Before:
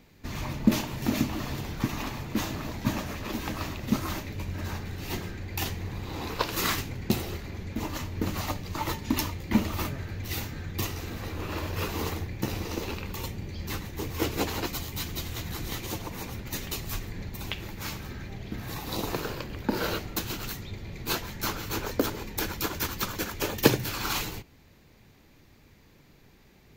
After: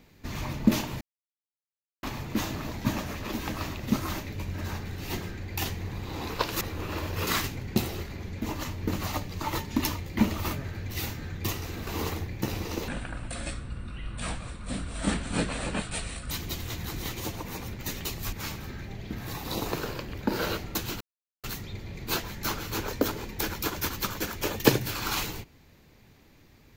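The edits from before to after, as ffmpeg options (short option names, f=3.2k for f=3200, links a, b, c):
-filter_complex "[0:a]asplit=10[a][b][c][d][e][f][g][h][i][j];[a]atrim=end=1.01,asetpts=PTS-STARTPTS,afade=t=out:st=1.006:d=0.004:c=hsin[k];[b]atrim=start=1.01:end=2.03,asetpts=PTS-STARTPTS,volume=0[l];[c]atrim=start=2.03:end=6.612,asetpts=PTS-STARTPTS,afade=t=in:d=0.004:c=hsin[m];[d]atrim=start=11.208:end=11.872[n];[e]atrim=start=6.608:end=11.212[o];[f]atrim=start=11.868:end=12.884[p];[g]atrim=start=12.88:end=14.97,asetpts=PTS-STARTPTS,asetrate=26901,aresample=44100[q];[h]atrim=start=14.966:end=16.992[r];[i]atrim=start=17.738:end=20.42,asetpts=PTS-STARTPTS,afade=t=out:st=2.678:d=0.004:c=hsin,apad=pad_dur=0.43[s];[j]atrim=start=20.42,asetpts=PTS-STARTPTS,afade=t=in:d=0.004:c=hsin[t];[k][l][m]concat=n=3:v=0:a=1[u];[u][n]acrossfade=d=0.004:c1=hsin:c2=hsin[v];[v][o]acrossfade=d=0.004:c1=hsin:c2=hsin[w];[w][p]acrossfade=d=0.004:c1=hsin:c2=hsin[x];[x][q]acrossfade=d=0.004:c1=hsin:c2=hsin[y];[y][r]acrossfade=d=0.004:c1=hsin:c2=hsin[z];[s][t]concat=n=2:v=0:a=1[aa];[z][aa]acrossfade=d=0.004:c1=hsin:c2=hsin"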